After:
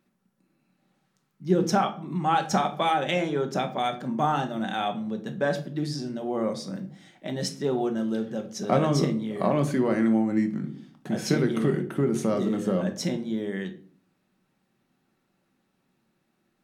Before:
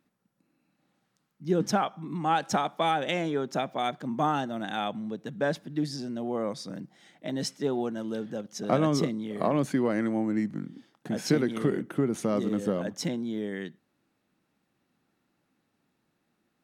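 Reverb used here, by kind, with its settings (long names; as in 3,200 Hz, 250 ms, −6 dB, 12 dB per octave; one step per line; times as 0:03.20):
rectangular room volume 380 cubic metres, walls furnished, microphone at 1.1 metres
level +1 dB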